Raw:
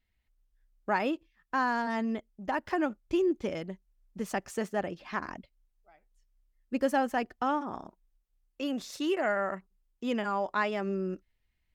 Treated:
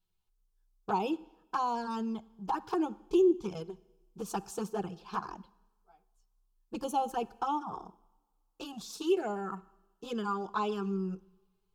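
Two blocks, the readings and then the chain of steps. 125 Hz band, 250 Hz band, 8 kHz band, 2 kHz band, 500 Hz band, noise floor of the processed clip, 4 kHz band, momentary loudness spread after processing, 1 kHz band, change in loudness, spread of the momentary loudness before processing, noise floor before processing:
+0.5 dB, −1.5 dB, +0.5 dB, −12.0 dB, −1.5 dB, −77 dBFS, −2.5 dB, 15 LU, −1.5 dB, −2.0 dB, 12 LU, −77 dBFS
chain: flanger swept by the level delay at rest 11.5 ms, full sweep at −24.5 dBFS
phaser with its sweep stopped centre 390 Hz, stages 8
coupled-rooms reverb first 0.9 s, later 2.8 s, from −25 dB, DRR 18 dB
level +4 dB

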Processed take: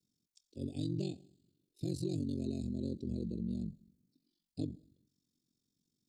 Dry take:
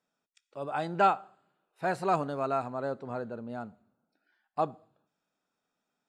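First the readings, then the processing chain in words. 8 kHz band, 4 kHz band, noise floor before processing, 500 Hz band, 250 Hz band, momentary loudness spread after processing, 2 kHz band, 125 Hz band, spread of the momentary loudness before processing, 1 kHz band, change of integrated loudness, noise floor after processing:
can't be measured, −3.5 dB, −85 dBFS, −13.0 dB, +2.0 dB, 14 LU, below −25 dB, +3.0 dB, 15 LU, below −35 dB, −7.5 dB, below −85 dBFS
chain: Chebyshev band-stop filter 330–4,300 Hz, order 3
high-shelf EQ 6,900 Hz −3.5 dB
downward compressor, threshold −39 dBFS, peak gain reduction 6 dB
frequency shifter −27 Hz
ring modulation 23 Hz
level +9 dB

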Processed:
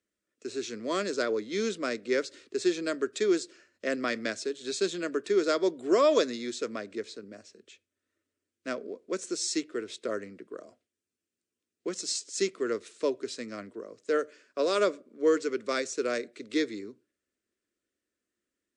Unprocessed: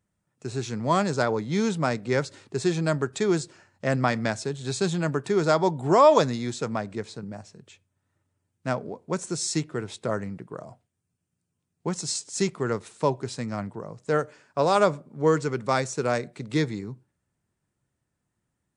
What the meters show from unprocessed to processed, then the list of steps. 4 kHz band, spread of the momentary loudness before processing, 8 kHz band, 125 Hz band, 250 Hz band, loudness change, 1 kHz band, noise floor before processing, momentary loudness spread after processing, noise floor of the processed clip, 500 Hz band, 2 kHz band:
−1.0 dB, 14 LU, −3.0 dB, −23.0 dB, −4.5 dB, −4.5 dB, −10.5 dB, −80 dBFS, 15 LU, below −85 dBFS, −3.0 dB, −3.5 dB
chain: three-way crossover with the lows and the highs turned down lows −16 dB, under 230 Hz, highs −13 dB, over 7,900 Hz
phaser with its sweep stopped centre 350 Hz, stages 4

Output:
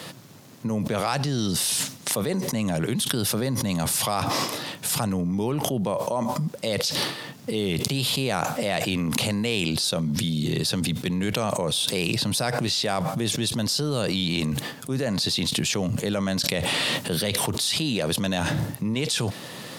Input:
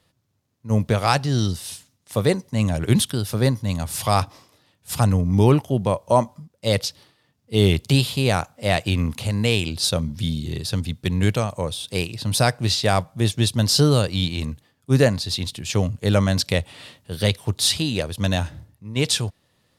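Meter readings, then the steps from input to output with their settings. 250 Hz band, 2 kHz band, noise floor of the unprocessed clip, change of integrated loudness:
−2.0 dB, −1.0 dB, −67 dBFS, −3.5 dB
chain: high-pass filter 140 Hz 24 dB per octave
envelope flattener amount 100%
level −12 dB

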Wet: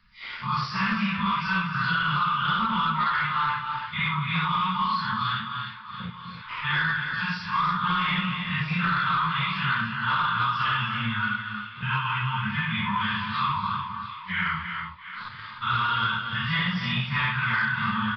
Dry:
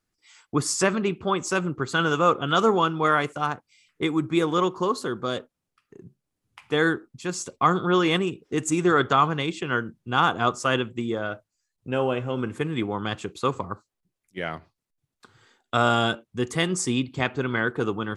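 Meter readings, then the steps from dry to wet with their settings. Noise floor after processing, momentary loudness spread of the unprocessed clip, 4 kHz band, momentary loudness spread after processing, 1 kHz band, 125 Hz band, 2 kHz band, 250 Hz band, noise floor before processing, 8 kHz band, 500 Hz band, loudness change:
−41 dBFS, 10 LU, +1.5 dB, 10 LU, +1.0 dB, +0.5 dB, +3.5 dB, −5.5 dB, −83 dBFS, below −25 dB, −26.5 dB, −1.0 dB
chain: random phases in long frames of 200 ms
brick-wall band-stop 230–880 Hz
parametric band 150 Hz −6 dB 2.2 octaves
downward compressor, threshold −25 dBFS, peak gain reduction 8.5 dB
leveller curve on the samples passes 1
soft clipping −19.5 dBFS, distortion −22 dB
high-frequency loss of the air 130 metres
feedback echo with a high-pass in the loop 674 ms, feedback 48%, high-pass 780 Hz, level −22.5 dB
reverb whose tail is shaped and stops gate 330 ms rising, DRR 8 dB
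downsampling to 11,025 Hz
multiband upward and downward compressor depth 70%
level +3.5 dB

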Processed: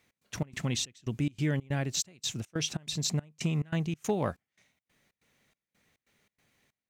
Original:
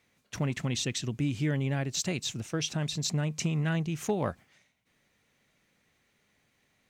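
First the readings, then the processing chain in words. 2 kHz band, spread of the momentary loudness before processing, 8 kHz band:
−2.5 dB, 4 LU, 0.0 dB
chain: gate pattern "x.xx.xxx..x" 141 BPM −24 dB
high-shelf EQ 11,000 Hz +4.5 dB

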